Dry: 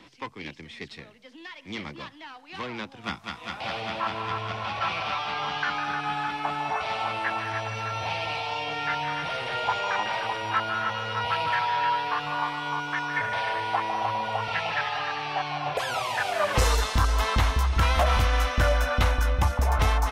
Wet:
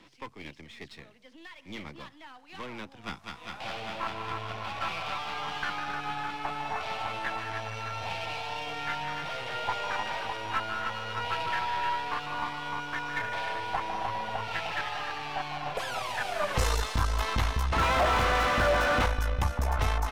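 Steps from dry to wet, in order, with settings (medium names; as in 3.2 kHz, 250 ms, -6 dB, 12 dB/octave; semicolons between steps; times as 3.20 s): partial rectifier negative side -7 dB; 17.72–19.06 s: overdrive pedal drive 33 dB, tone 1.4 kHz, clips at -14 dBFS; trim -2.5 dB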